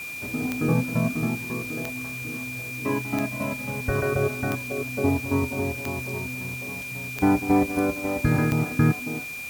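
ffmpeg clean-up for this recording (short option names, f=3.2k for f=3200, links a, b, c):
-af "adeclick=t=4,bandreject=f=2.4k:w=30,afwtdn=0.0071"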